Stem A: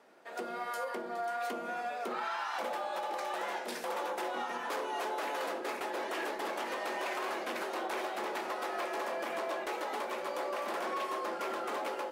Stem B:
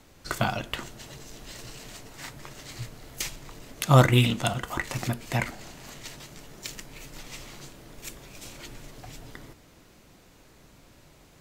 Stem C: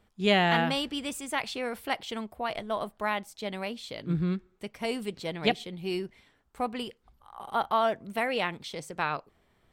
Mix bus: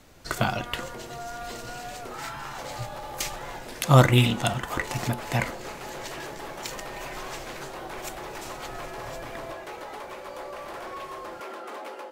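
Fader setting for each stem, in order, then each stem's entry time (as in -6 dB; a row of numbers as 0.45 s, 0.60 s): -2.0 dB, +1.0 dB, mute; 0.00 s, 0.00 s, mute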